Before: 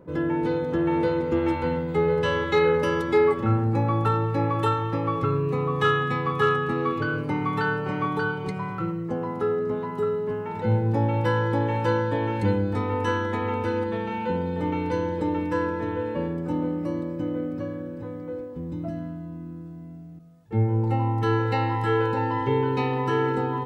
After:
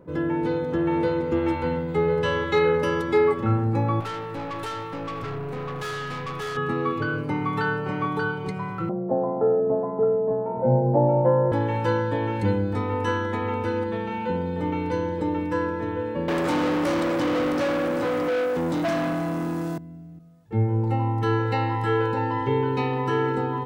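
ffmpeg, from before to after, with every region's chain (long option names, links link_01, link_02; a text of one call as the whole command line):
ffmpeg -i in.wav -filter_complex "[0:a]asettb=1/sr,asplit=3[link_01][link_02][link_03];[link_01]atrim=end=4.004[link_04];[link_02]atrim=start=4:end=6.57,asetpts=PTS-STARTPTS,afade=type=in:duration=0.004:curve=qsin,afade=type=out:start_time=2.566:duration=0.004:curve=qsin,highshelf=frequency=5300:gain=7.5,bandreject=frequency=111.6:width_type=h:width=4,bandreject=frequency=223.2:width_type=h:width=4,bandreject=frequency=334.8:width_type=h:width=4,aeval=exprs='(tanh(28.2*val(0)+0.25)-tanh(0.25))/28.2':channel_layout=same[link_05];[link_03]atrim=start=6.566[link_06];[link_04][link_05]acrossfade=duration=0.004:curve1=hsin:curve2=qsin[link_07];[link_07][link_06]acrossfade=duration=0.004:curve1=qsin:curve2=hsin,asettb=1/sr,asplit=3[link_08][link_09][link_10];[link_08]atrim=end=8.894[link_11];[link_09]atrim=start=8.89:end=11.52,asetpts=PTS-STARTPTS,afade=type=in:duration=0.004:curve=qsin,afade=type=out:start_time=2.626:duration=0.004:curve=qsin,lowpass=frequency=670:width_type=q:width=7,afreqshift=20[link_12];[link_10]atrim=start=11.516[link_13];[link_11][link_12]acrossfade=duration=0.004:curve1=hsin:curve2=qsin[link_14];[link_14][link_13]acrossfade=duration=0.004:curve1=qsin:curve2=hsin,asettb=1/sr,asplit=3[link_15][link_16][link_17];[link_15]atrim=end=16.284[link_18];[link_16]atrim=start=16.28:end=19.78,asetpts=PTS-STARTPTS,afade=type=in:duration=0.004:curve=qsin,afade=type=out:start_time=3.496:duration=0.004:curve=qsin,bass=frequency=250:gain=-1,treble=frequency=4000:gain=11,asplit=2[link_19][link_20];[link_20]highpass=frequency=720:poles=1,volume=32dB,asoftclip=type=tanh:threshold=-16.5dB[link_21];[link_19][link_21]amix=inputs=2:normalize=0,lowpass=frequency=4100:poles=1,volume=-6dB,highpass=frequency=130:poles=1[link_22];[link_17]atrim=start=19.776[link_23];[link_18][link_22]acrossfade=duration=0.004:curve1=hsin:curve2=qsin[link_24];[link_24][link_23]acrossfade=duration=0.004:curve1=qsin:curve2=hsin" out.wav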